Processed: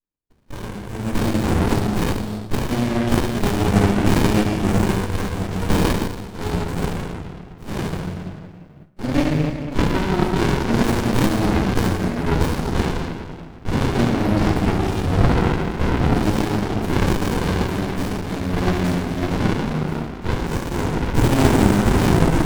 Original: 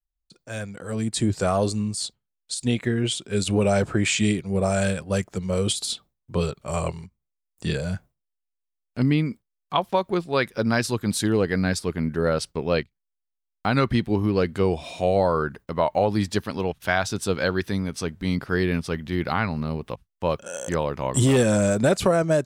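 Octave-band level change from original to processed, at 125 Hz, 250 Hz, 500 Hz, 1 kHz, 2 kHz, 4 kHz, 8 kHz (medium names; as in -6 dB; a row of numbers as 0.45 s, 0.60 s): +6.0 dB, +5.5 dB, 0.0 dB, +4.0 dB, +2.0 dB, +1.0 dB, -2.5 dB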